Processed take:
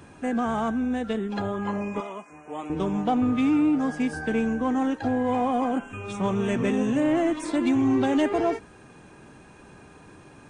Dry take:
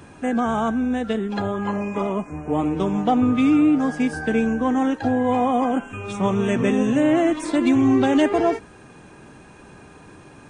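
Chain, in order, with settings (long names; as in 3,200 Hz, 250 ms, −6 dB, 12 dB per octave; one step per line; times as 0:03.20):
0:02.00–0:02.70: high-pass filter 1,200 Hz 6 dB per octave
in parallel at −7 dB: hard clipping −18.5 dBFS, distortion −11 dB
on the sum: level −7 dB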